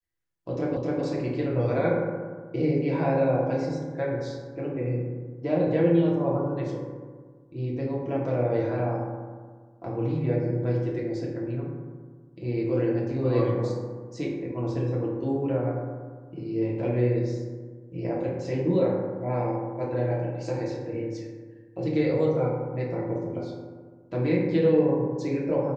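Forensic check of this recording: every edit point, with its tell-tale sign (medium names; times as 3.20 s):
0.77 s: repeat of the last 0.26 s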